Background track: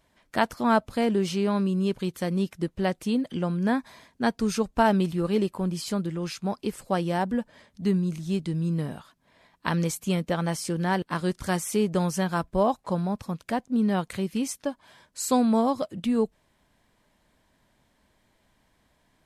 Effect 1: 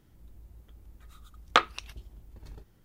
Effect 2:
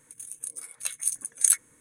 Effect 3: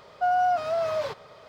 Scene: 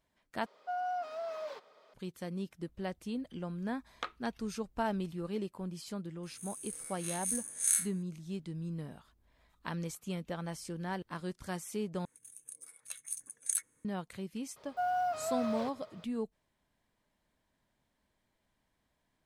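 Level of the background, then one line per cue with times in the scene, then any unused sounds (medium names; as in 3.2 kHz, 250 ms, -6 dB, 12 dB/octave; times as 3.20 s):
background track -12.5 dB
0.46 s: replace with 3 -13 dB + high-pass 240 Hz 24 dB/octave
2.47 s: add 1 -18 dB
6.23 s: add 2 -1.5 dB + spectral blur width 115 ms
8.39 s: add 1 -15 dB + compression 16:1, threshold -51 dBFS
12.05 s: replace with 2 -12.5 dB
14.56 s: add 3 -9.5 dB + block-companded coder 7-bit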